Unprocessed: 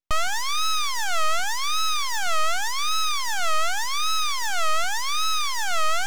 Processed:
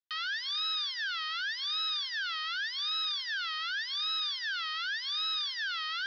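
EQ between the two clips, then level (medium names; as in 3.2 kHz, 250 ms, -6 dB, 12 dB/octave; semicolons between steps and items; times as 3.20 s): elliptic band-pass 1.6–5 kHz, stop band 40 dB; distance through air 61 m; static phaser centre 2.3 kHz, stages 6; 0.0 dB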